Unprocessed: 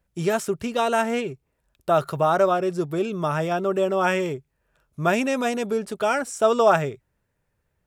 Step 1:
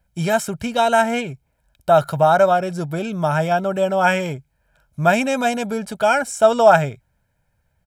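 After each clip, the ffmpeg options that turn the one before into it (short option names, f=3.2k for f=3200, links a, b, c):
-af "aecho=1:1:1.3:0.65,volume=3.5dB"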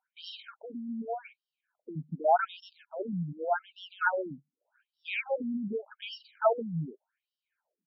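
-af "afftfilt=real='re*between(b*sr/1024,200*pow(4000/200,0.5+0.5*sin(2*PI*0.85*pts/sr))/1.41,200*pow(4000/200,0.5+0.5*sin(2*PI*0.85*pts/sr))*1.41)':imag='im*between(b*sr/1024,200*pow(4000/200,0.5+0.5*sin(2*PI*0.85*pts/sr))/1.41,200*pow(4000/200,0.5+0.5*sin(2*PI*0.85*pts/sr))*1.41)':win_size=1024:overlap=0.75,volume=-6dB"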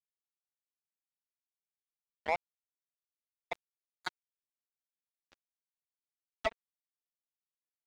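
-filter_complex "[0:a]asplit=2[a][b];[b]adelay=1283,volume=-10dB,highshelf=f=4k:g=-28.9[c];[a][c]amix=inputs=2:normalize=0,acrusher=bits=2:mix=0:aa=0.5,alimiter=limit=-21.5dB:level=0:latency=1:release=186,volume=3dB"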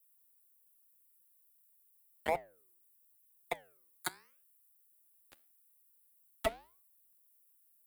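-filter_complex "[0:a]acrossover=split=610[a][b];[b]acompressor=threshold=-41dB:ratio=6[c];[a][c]amix=inputs=2:normalize=0,aexciter=amount=15.1:drive=3.3:freq=8.4k,flanger=delay=7.4:depth=9:regen=-85:speed=0.88:shape=sinusoidal,volume=9.5dB"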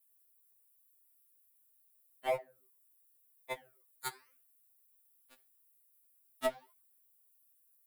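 -af "afftfilt=real='re*2.45*eq(mod(b,6),0)':imag='im*2.45*eq(mod(b,6),0)':win_size=2048:overlap=0.75,volume=1.5dB"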